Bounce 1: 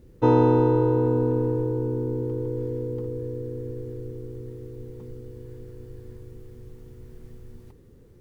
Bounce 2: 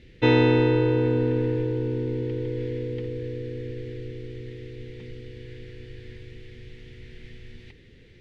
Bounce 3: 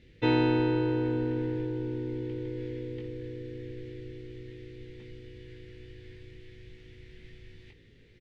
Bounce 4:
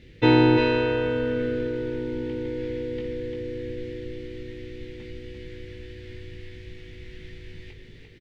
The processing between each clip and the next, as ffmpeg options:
-af "lowpass=f=3.5k:t=q:w=1.8,highshelf=f=1.5k:t=q:w=3:g=10"
-filter_complex "[0:a]asplit=2[a][b];[b]adelay=19,volume=-5dB[c];[a][c]amix=inputs=2:normalize=0,volume=-7dB"
-af "aecho=1:1:346:0.562,volume=7.5dB"

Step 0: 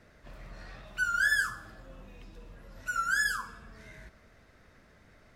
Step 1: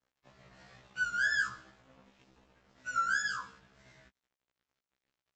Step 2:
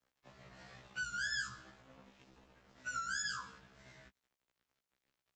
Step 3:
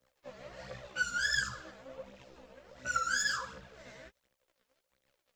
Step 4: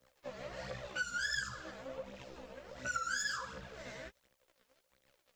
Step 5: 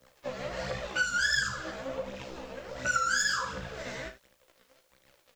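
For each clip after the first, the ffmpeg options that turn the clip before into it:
-af "highpass=78,aresample=16000,aeval=exprs='sgn(val(0))*max(abs(val(0))-0.00224,0)':c=same,aresample=44100,afftfilt=real='re*1.73*eq(mod(b,3),0)':imag='im*1.73*eq(mod(b,3),0)':win_size=2048:overlap=0.75"
-filter_complex "[0:a]acrossover=split=210|3000[a][b][c];[b]acompressor=threshold=-41dB:ratio=6[d];[a][d][c]amix=inputs=3:normalize=0,volume=1dB"
-af "equalizer=f=540:t=o:w=0.34:g=14,aphaser=in_gain=1:out_gain=1:delay=4.8:decay=0.57:speed=1.4:type=triangular,volume=5dB"
-af "acompressor=threshold=-46dB:ratio=2,volume=4.5dB"
-af "aecho=1:1:37|76:0.316|0.2,volume=8.5dB"

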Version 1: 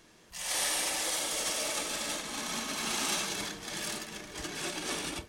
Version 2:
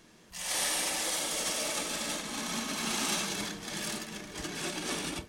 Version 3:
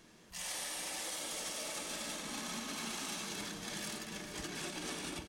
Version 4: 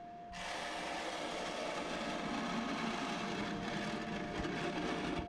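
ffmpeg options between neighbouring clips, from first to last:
-af "equalizer=f=200:w=1.6:g=5.5"
-af "acompressor=threshold=-36dB:ratio=6,aecho=1:1:441:0.299,volume=-2.5dB"
-af "adynamicsmooth=sensitivity=1.5:basefreq=2.5k,aeval=exprs='val(0)+0.002*sin(2*PI*700*n/s)':c=same,volume=6dB"

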